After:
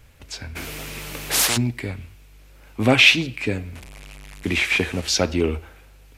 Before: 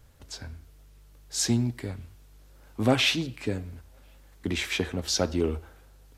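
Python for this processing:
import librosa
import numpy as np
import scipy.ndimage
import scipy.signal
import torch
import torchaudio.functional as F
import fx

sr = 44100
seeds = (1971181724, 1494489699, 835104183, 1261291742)

y = fx.delta_mod(x, sr, bps=64000, step_db=-40.0, at=(3.75, 5.08))
y = fx.peak_eq(y, sr, hz=2400.0, db=10.0, octaves=0.65)
y = fx.spectral_comp(y, sr, ratio=10.0, at=(0.55, 1.56), fade=0.02)
y = y * 10.0 ** (5.0 / 20.0)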